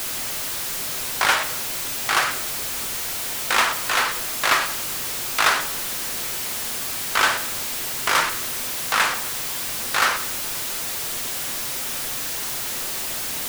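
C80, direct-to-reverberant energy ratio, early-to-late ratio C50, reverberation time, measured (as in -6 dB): 14.5 dB, 7.5 dB, 11.5 dB, 1.1 s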